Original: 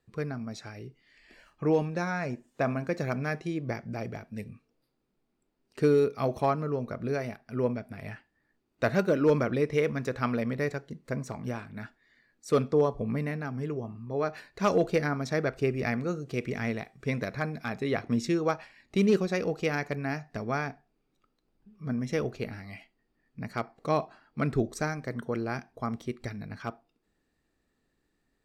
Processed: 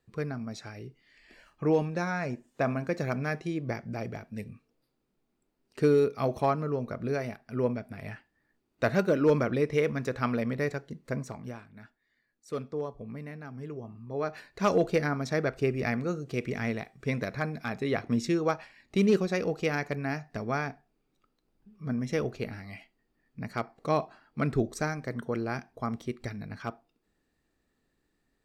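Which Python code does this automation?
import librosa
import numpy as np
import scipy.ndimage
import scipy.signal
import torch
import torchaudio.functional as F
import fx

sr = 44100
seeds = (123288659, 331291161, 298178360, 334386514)

y = fx.gain(x, sr, db=fx.line((11.18, 0.0), (11.71, -10.0), (13.18, -10.0), (14.52, 0.0)))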